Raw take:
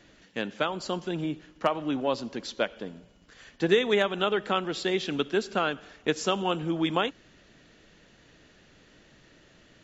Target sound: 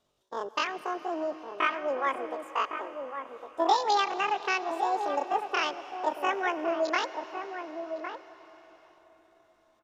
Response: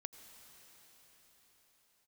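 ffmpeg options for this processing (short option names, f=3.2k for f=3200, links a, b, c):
-filter_complex "[0:a]afwtdn=0.0316,highshelf=f=3.8k:g=-8,asetrate=88200,aresample=44100,atempo=0.5,asplit=2[a][b];[b]adelay=1108,volume=-7dB,highshelf=f=4k:g=-24.9[c];[a][c]amix=inputs=2:normalize=0,asplit=2[d][e];[1:a]atrim=start_sample=2205[f];[e][f]afir=irnorm=-1:irlink=0,volume=3.5dB[g];[d][g]amix=inputs=2:normalize=0,volume=-6dB"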